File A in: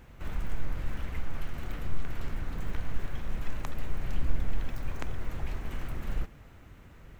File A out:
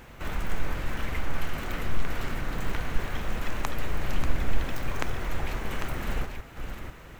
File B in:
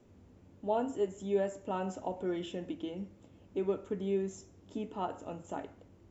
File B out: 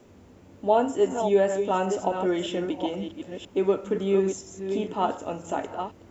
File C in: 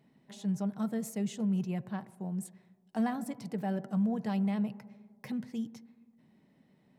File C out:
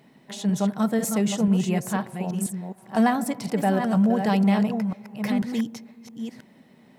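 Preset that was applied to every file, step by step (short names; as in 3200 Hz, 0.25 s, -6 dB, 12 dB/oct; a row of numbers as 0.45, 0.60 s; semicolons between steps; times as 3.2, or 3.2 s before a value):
reverse delay 0.493 s, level -7 dB; low shelf 240 Hz -8.5 dB; normalise peaks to -9 dBFS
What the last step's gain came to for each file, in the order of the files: +9.5, +12.0, +14.5 dB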